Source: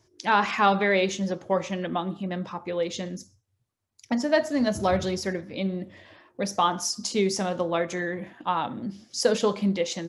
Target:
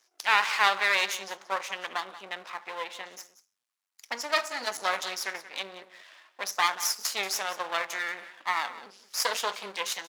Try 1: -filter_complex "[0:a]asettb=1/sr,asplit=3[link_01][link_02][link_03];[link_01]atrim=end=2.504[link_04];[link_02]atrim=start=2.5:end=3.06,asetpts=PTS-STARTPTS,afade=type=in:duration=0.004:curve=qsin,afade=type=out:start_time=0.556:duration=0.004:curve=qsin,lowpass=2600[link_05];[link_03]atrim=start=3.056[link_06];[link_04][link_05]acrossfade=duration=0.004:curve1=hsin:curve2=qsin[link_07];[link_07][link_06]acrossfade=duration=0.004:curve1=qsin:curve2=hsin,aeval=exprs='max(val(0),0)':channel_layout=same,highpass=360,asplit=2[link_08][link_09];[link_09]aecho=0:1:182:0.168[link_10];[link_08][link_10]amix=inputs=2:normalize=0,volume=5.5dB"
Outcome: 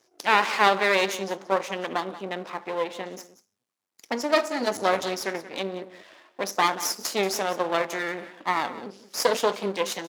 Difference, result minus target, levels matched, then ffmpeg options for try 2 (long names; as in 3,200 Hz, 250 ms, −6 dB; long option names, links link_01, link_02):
500 Hz band +8.5 dB
-filter_complex "[0:a]asettb=1/sr,asplit=3[link_01][link_02][link_03];[link_01]atrim=end=2.504[link_04];[link_02]atrim=start=2.5:end=3.06,asetpts=PTS-STARTPTS,afade=type=in:duration=0.004:curve=qsin,afade=type=out:start_time=0.556:duration=0.004:curve=qsin,lowpass=2600[link_05];[link_03]atrim=start=3.056[link_06];[link_04][link_05]acrossfade=duration=0.004:curve1=hsin:curve2=qsin[link_07];[link_07][link_06]acrossfade=duration=0.004:curve1=qsin:curve2=hsin,aeval=exprs='max(val(0),0)':channel_layout=same,highpass=1100,asplit=2[link_08][link_09];[link_09]aecho=0:1:182:0.168[link_10];[link_08][link_10]amix=inputs=2:normalize=0,volume=5.5dB"